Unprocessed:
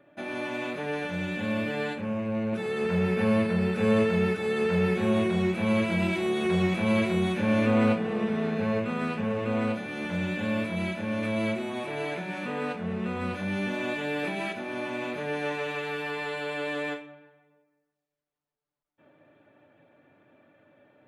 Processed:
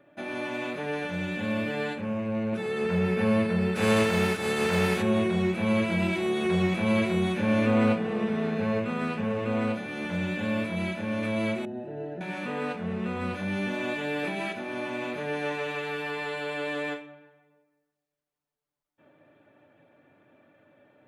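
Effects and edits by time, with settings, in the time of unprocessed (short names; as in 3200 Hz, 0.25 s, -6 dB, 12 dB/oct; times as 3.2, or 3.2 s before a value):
3.75–5.01 spectral contrast lowered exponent 0.68
11.65–12.21 running mean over 39 samples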